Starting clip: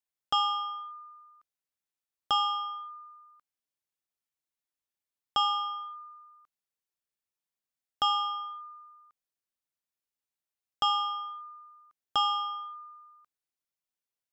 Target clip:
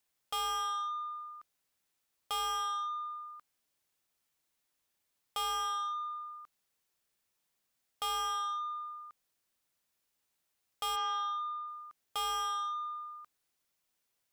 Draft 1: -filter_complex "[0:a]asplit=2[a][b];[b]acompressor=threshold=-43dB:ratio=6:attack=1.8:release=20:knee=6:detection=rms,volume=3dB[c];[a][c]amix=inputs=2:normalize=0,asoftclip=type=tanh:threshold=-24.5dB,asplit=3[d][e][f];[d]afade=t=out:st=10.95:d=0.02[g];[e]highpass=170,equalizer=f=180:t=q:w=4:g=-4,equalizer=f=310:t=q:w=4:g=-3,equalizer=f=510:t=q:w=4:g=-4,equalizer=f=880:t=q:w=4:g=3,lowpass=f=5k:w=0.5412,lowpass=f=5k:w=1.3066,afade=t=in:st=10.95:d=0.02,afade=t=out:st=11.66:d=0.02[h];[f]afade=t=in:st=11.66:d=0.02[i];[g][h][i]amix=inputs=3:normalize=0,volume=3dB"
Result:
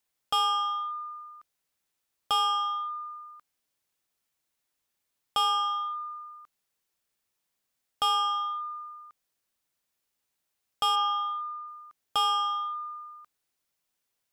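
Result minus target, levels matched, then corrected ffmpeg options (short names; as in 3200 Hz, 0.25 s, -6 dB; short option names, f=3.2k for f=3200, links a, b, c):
soft clip: distortion -10 dB
-filter_complex "[0:a]asplit=2[a][b];[b]acompressor=threshold=-43dB:ratio=6:attack=1.8:release=20:knee=6:detection=rms,volume=3dB[c];[a][c]amix=inputs=2:normalize=0,asoftclip=type=tanh:threshold=-36dB,asplit=3[d][e][f];[d]afade=t=out:st=10.95:d=0.02[g];[e]highpass=170,equalizer=f=180:t=q:w=4:g=-4,equalizer=f=310:t=q:w=4:g=-3,equalizer=f=510:t=q:w=4:g=-4,equalizer=f=880:t=q:w=4:g=3,lowpass=f=5k:w=0.5412,lowpass=f=5k:w=1.3066,afade=t=in:st=10.95:d=0.02,afade=t=out:st=11.66:d=0.02[h];[f]afade=t=in:st=11.66:d=0.02[i];[g][h][i]amix=inputs=3:normalize=0,volume=3dB"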